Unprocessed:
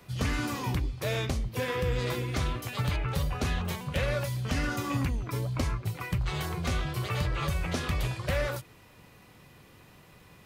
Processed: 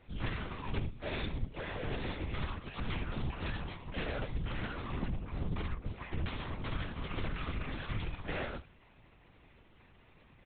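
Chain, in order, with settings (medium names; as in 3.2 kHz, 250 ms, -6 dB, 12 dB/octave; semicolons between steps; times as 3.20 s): dynamic bell 500 Hz, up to -3 dB, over -40 dBFS, Q 0.97; saturation -35 dBFS, distortion -8 dB; delay 73 ms -13.5 dB; LPC vocoder at 8 kHz whisper; upward expansion 2.5:1, over -41 dBFS; trim +5.5 dB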